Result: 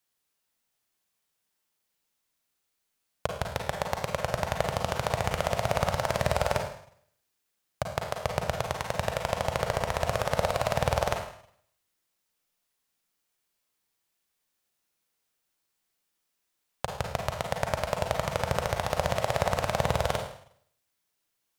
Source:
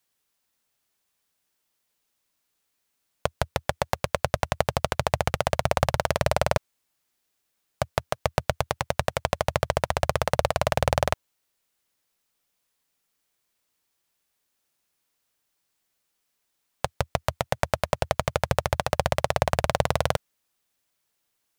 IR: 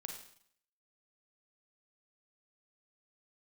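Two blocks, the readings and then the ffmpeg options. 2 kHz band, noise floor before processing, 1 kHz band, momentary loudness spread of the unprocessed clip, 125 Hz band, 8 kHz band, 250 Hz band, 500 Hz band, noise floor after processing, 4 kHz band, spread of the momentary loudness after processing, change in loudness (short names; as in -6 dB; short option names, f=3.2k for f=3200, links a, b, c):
-3.0 dB, -77 dBFS, -3.0 dB, 5 LU, -3.5 dB, -3.0 dB, -2.5 dB, -3.0 dB, -80 dBFS, -3.0 dB, 7 LU, -3.0 dB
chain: -filter_complex "[1:a]atrim=start_sample=2205[a];[0:a][a]afir=irnorm=-1:irlink=0"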